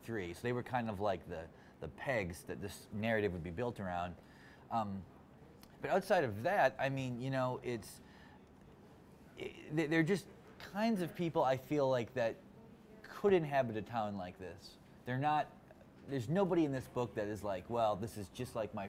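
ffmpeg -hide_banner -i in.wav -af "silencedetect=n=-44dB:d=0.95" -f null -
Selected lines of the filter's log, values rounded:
silence_start: 7.97
silence_end: 9.39 | silence_duration: 1.42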